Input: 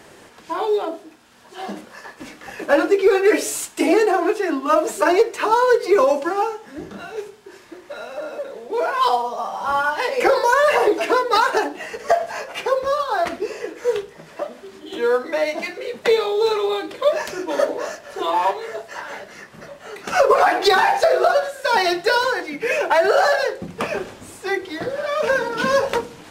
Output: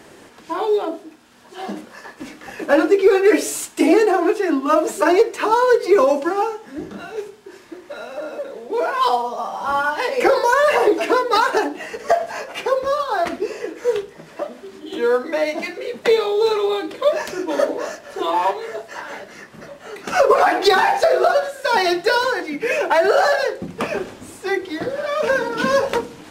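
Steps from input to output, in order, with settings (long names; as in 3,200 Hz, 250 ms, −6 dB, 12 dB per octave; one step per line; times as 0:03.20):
parametric band 280 Hz +4.5 dB 0.88 octaves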